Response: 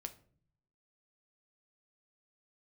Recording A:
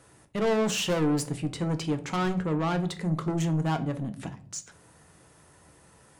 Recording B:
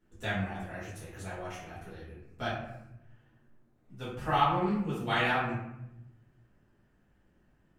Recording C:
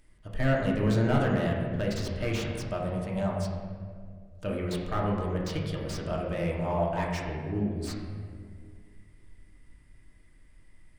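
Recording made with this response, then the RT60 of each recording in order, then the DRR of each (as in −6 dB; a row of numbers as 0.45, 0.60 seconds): A; 0.50, 0.85, 2.0 seconds; 7.5, −11.0, −3.0 decibels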